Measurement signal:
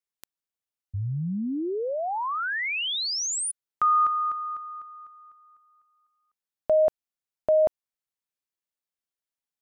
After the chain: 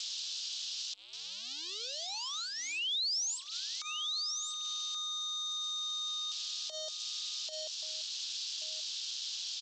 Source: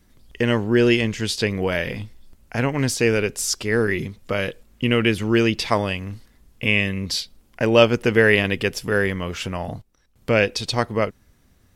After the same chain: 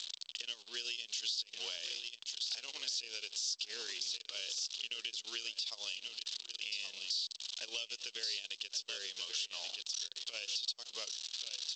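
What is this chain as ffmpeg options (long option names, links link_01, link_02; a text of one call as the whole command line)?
ffmpeg -i in.wav -filter_complex "[0:a]aeval=exprs='val(0)+0.5*0.0376*sgn(val(0))':channel_layout=same,acrossover=split=650|5900[link_01][link_02][link_03];[link_01]acompressor=threshold=-25dB:ratio=2[link_04];[link_02]acompressor=threshold=-36dB:ratio=3[link_05];[link_03]acompressor=threshold=-39dB:ratio=3[link_06];[link_04][link_05][link_06]amix=inputs=3:normalize=0,aderivative,aecho=1:1:1130:0.335,acrossover=split=4100[link_07][link_08];[link_07]aexciter=amount=15:drive=7.7:freq=3200[link_09];[link_08]volume=27.5dB,asoftclip=hard,volume=-27.5dB[link_10];[link_09][link_10]amix=inputs=2:normalize=0,acompressor=threshold=-32dB:ratio=8:attack=1.6:release=197:knee=1:detection=peak,agate=range=-33dB:threshold=-39dB:ratio=3:release=32:detection=rms,highpass=370" -ar 16000 -c:a g722 out.g722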